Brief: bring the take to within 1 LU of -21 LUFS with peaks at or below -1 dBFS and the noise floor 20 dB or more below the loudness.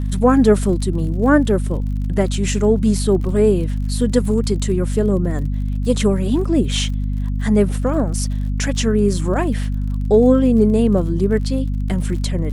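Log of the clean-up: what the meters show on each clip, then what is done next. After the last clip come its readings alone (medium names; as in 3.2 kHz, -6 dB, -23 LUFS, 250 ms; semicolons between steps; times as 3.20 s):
tick rate 48 per s; hum 50 Hz; highest harmonic 250 Hz; hum level -18 dBFS; loudness -18.0 LUFS; peak level -1.5 dBFS; loudness target -21.0 LUFS
-> de-click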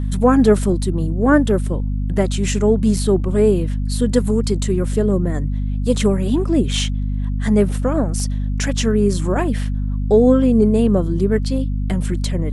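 tick rate 0.32 per s; hum 50 Hz; highest harmonic 250 Hz; hum level -18 dBFS
-> de-hum 50 Hz, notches 5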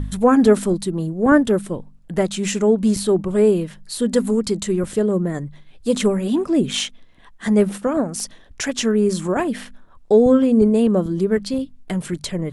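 hum not found; loudness -19.0 LUFS; peak level -3.0 dBFS; loudness target -21.0 LUFS
-> trim -2 dB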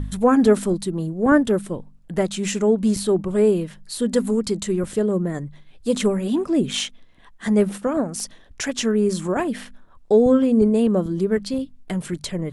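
loudness -21.0 LUFS; peak level -5.0 dBFS; noise floor -49 dBFS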